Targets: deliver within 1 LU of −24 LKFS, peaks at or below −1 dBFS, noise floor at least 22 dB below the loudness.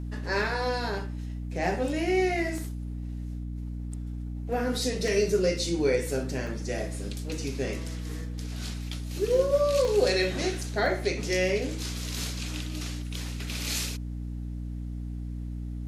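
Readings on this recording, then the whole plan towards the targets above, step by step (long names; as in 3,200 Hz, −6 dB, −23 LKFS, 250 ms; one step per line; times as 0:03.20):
number of dropouts 6; longest dropout 1.2 ms; mains hum 60 Hz; hum harmonics up to 300 Hz; level of the hum −32 dBFS; integrated loudness −29.5 LKFS; sample peak −12.0 dBFS; target loudness −24.0 LKFS
→ repair the gap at 0:02.58/0:05.08/0:06.47/0:09.85/0:10.86/0:12.39, 1.2 ms
hum removal 60 Hz, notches 5
level +5.5 dB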